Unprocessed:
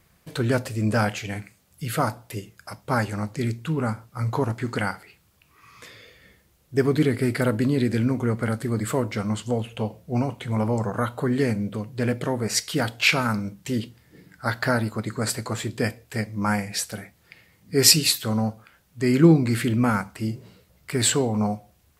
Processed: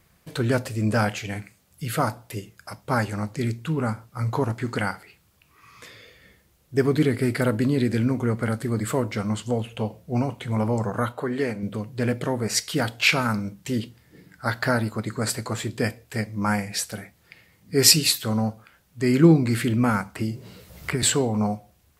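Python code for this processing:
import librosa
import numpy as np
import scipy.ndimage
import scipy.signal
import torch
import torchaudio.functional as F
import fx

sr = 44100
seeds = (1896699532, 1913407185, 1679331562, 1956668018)

y = fx.bass_treble(x, sr, bass_db=-10, treble_db=-6, at=(11.12, 11.63))
y = fx.band_squash(y, sr, depth_pct=100, at=(20.15, 21.03))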